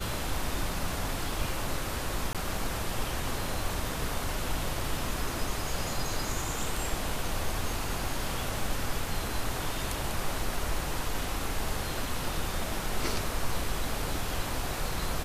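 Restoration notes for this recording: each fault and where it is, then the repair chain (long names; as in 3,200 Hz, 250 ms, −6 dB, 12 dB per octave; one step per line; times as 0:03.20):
0:02.33–0:02.35: drop-out 17 ms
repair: repair the gap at 0:02.33, 17 ms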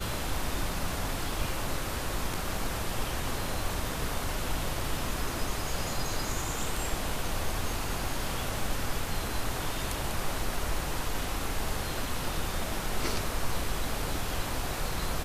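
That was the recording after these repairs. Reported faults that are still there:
none of them is left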